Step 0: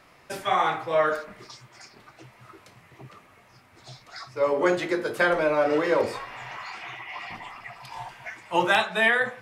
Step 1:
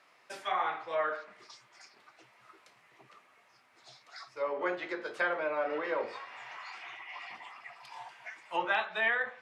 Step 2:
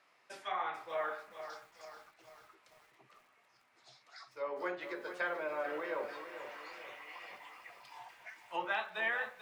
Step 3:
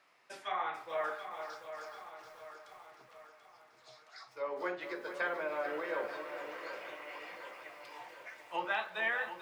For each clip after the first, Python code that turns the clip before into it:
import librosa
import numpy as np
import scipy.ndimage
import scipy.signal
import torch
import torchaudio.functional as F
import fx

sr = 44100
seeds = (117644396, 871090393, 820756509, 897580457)

y1 = fx.env_lowpass_down(x, sr, base_hz=2700.0, full_db=-19.5)
y1 = fx.weighting(y1, sr, curve='A')
y1 = y1 * librosa.db_to_amplitude(-8.0)
y2 = fx.echo_crushed(y1, sr, ms=441, feedback_pct=55, bits=9, wet_db=-10)
y2 = y2 * librosa.db_to_amplitude(-5.5)
y3 = fx.echo_feedback(y2, sr, ms=735, feedback_pct=51, wet_db=-10.0)
y3 = y3 * librosa.db_to_amplitude(1.0)